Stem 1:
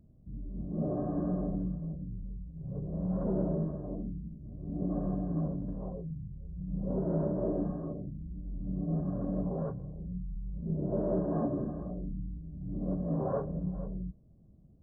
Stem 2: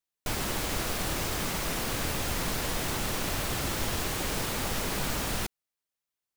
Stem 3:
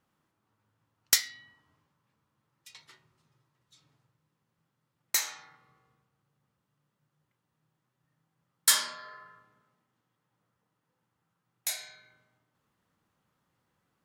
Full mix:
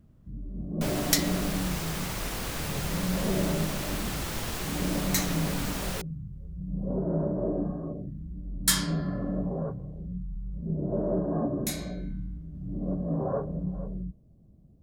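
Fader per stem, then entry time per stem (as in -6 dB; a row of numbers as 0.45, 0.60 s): +2.5, -3.0, -1.5 dB; 0.00, 0.55, 0.00 s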